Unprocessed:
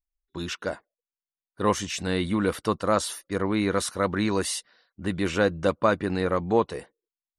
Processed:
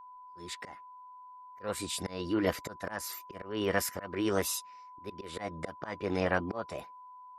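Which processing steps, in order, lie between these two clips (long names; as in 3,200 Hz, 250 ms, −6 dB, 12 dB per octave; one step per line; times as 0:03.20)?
volume swells 278 ms
formants moved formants +5 semitones
steady tone 1,000 Hz −44 dBFS
level −4 dB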